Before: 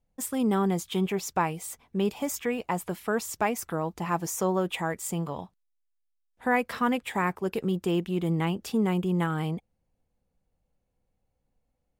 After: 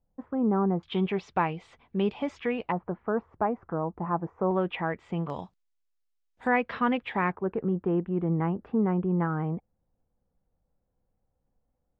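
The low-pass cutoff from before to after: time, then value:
low-pass 24 dB/octave
1.3 kHz
from 0.83 s 3.5 kHz
from 2.72 s 1.3 kHz
from 4.51 s 2.8 kHz
from 5.30 s 7.3 kHz
from 6.47 s 3.4 kHz
from 7.32 s 1.6 kHz

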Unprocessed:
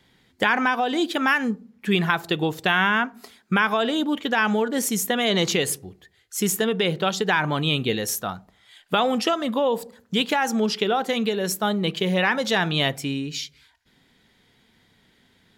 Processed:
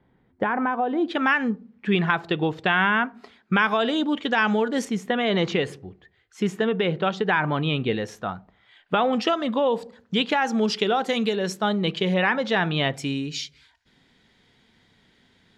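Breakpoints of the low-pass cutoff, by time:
1.1 kHz
from 1.08 s 3 kHz
from 3.54 s 5.3 kHz
from 4.85 s 2.5 kHz
from 9.13 s 4.3 kHz
from 10.61 s 8.1 kHz
from 11.36 s 4.9 kHz
from 12.14 s 2.9 kHz
from 12.94 s 7.4 kHz

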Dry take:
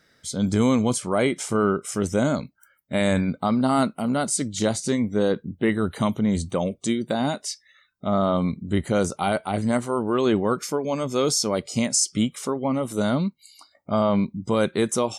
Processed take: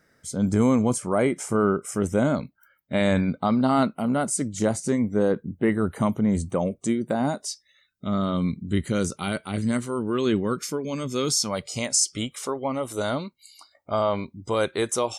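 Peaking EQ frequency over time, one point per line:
peaking EQ -12.5 dB 0.98 oct
1.88 s 3.7 kHz
2.98 s 11 kHz
3.69 s 11 kHz
4.32 s 3.8 kHz
7.21 s 3.8 kHz
8.05 s 750 Hz
11.19 s 750 Hz
11.83 s 190 Hz

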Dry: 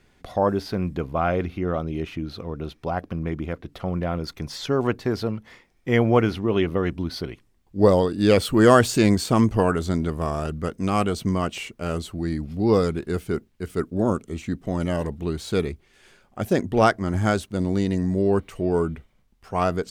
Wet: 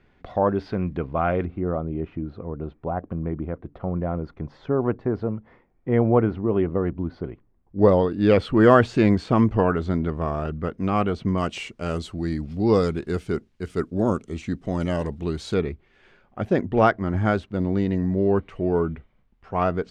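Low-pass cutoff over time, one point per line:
2.6 kHz
from 1.45 s 1.1 kHz
from 7.79 s 2.5 kHz
from 11.38 s 6.8 kHz
from 15.54 s 2.6 kHz

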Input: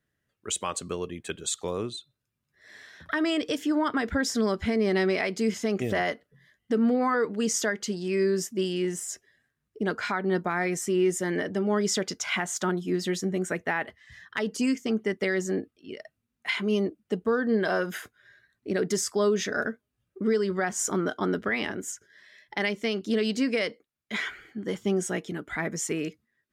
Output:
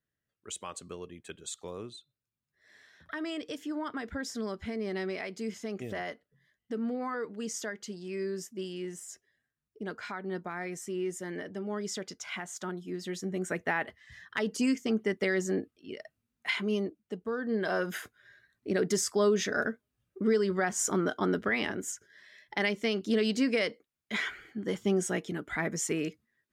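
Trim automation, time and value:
12.97 s -10 dB
13.64 s -2 dB
16.49 s -2 dB
17.20 s -10 dB
17.96 s -1.5 dB

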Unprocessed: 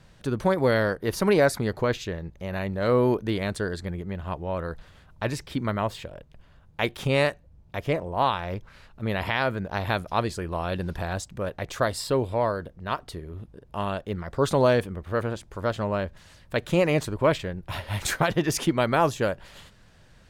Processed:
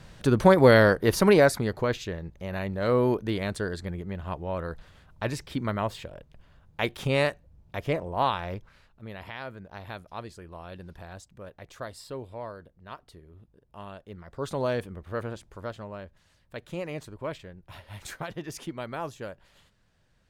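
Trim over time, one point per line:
0.97 s +5.5 dB
1.74 s -2 dB
8.46 s -2 dB
9.09 s -13.5 dB
14.00 s -13.5 dB
14.90 s -6 dB
15.47 s -6 dB
15.88 s -13 dB

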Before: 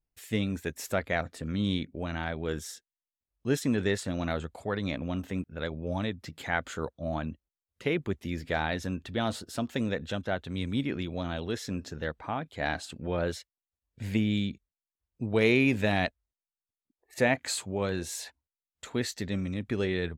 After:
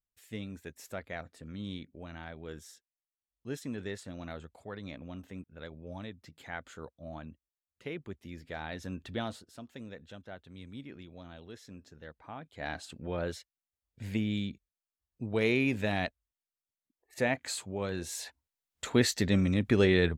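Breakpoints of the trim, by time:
8.57 s -11 dB
9.13 s -3 dB
9.51 s -15 dB
12.02 s -15 dB
12.89 s -4.5 dB
17.89 s -4.5 dB
18.87 s +5.5 dB

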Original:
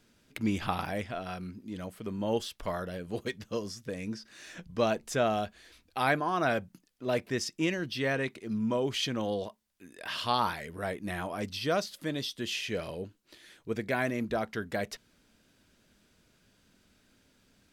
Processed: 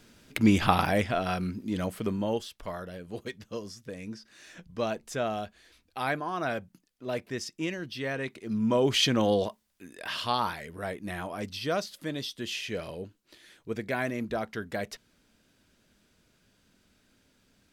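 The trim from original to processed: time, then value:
2.03 s +8.5 dB
2.43 s -3 dB
8.14 s -3 dB
8.95 s +7.5 dB
9.46 s +7.5 dB
10.40 s -0.5 dB

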